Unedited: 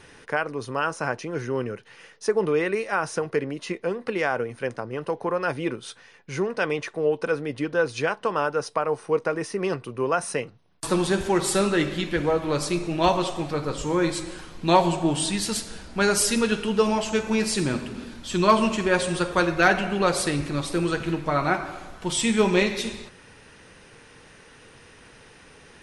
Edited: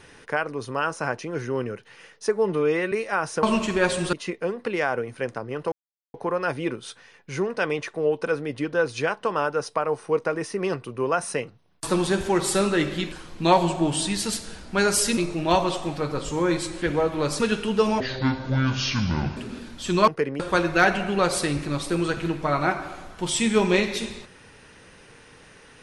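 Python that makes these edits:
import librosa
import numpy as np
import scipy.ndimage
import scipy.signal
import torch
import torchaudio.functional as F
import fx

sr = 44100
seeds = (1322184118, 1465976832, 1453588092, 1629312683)

y = fx.edit(x, sr, fx.stretch_span(start_s=2.32, length_s=0.4, factor=1.5),
    fx.swap(start_s=3.23, length_s=0.32, other_s=18.53, other_length_s=0.7),
    fx.insert_silence(at_s=5.14, length_s=0.42),
    fx.swap(start_s=12.12, length_s=0.58, other_s=14.35, other_length_s=2.05),
    fx.speed_span(start_s=17.0, length_s=0.82, speed=0.6), tone=tone)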